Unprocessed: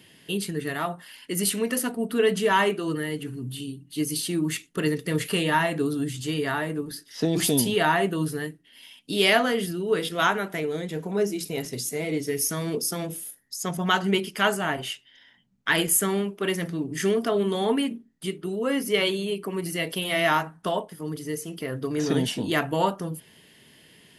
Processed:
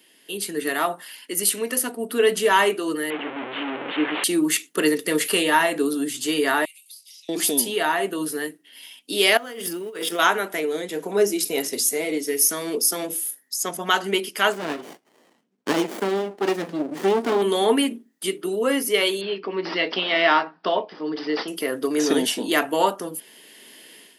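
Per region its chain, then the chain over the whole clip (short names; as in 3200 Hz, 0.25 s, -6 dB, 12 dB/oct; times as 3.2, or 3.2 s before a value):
3.1–4.24 delta modulation 16 kbps, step -26 dBFS + bell 140 Hz -4.5 dB 1.8 oct
6.65–7.29 steep high-pass 2200 Hz 96 dB/oct + compressor 8:1, threshold -50 dBFS
9.37–10.19 G.711 law mismatch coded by A + notch 4100 Hz, Q 8.2 + negative-ratio compressor -33 dBFS
14.52–17.42 air absorption 77 m + running maximum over 33 samples
19.21–21.48 careless resampling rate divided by 4×, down none, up filtered + doubler 16 ms -12.5 dB
whole clip: HPF 260 Hz 24 dB/oct; high shelf 7100 Hz +7.5 dB; AGC gain up to 11 dB; gain -4 dB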